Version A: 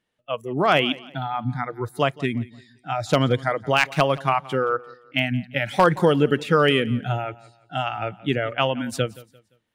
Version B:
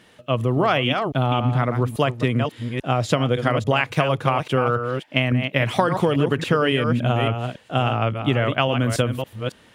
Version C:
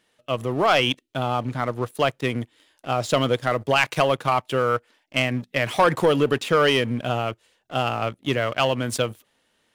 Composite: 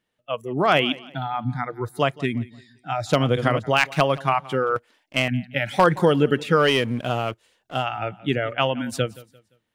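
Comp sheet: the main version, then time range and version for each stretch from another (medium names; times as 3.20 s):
A
3.19–3.59 s: from B, crossfade 0.10 s
4.76–5.28 s: from C
6.62–7.79 s: from C, crossfade 0.16 s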